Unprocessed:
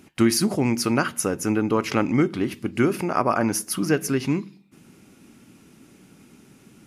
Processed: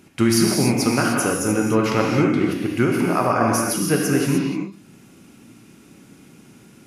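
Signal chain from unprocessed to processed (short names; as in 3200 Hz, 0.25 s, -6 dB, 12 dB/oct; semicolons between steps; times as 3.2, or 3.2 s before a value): non-linear reverb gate 0.33 s flat, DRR -1.5 dB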